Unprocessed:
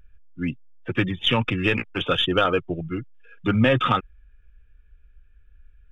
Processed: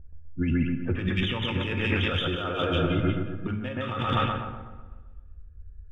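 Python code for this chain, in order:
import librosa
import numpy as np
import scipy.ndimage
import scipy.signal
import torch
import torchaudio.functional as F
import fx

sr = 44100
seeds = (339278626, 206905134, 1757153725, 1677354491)

y = fx.peak_eq(x, sr, hz=82.0, db=11.5, octaves=0.54)
y = fx.echo_split(y, sr, split_hz=2300.0, low_ms=126, high_ms=180, feedback_pct=52, wet_db=-3.0)
y = fx.env_lowpass(y, sr, base_hz=550.0, full_db=-16.5)
y = fx.over_compress(y, sr, threshold_db=-26.0, ratio=-1.0)
y = fx.rev_plate(y, sr, seeds[0], rt60_s=1.2, hf_ratio=0.65, predelay_ms=0, drr_db=7.0)
y = y * 10.0 ** (-2.0 / 20.0)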